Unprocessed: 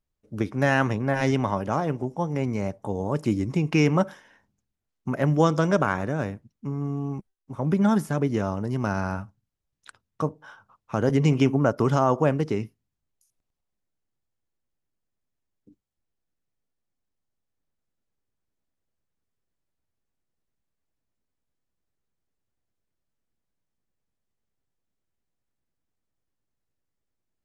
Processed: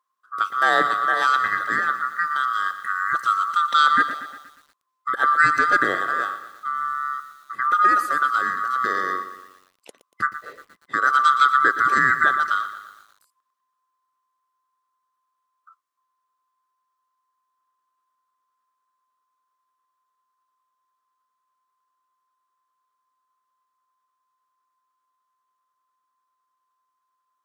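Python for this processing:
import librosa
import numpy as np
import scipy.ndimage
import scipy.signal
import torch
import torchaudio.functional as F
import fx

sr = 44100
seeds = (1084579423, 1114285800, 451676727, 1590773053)

y = fx.band_swap(x, sr, width_hz=1000)
y = scipy.signal.sosfilt(scipy.signal.butter(2, 270.0, 'highpass', fs=sr, output='sos'), y)
y = fx.echo_crushed(y, sr, ms=118, feedback_pct=55, bits=8, wet_db=-12)
y = y * 10.0 ** (3.0 / 20.0)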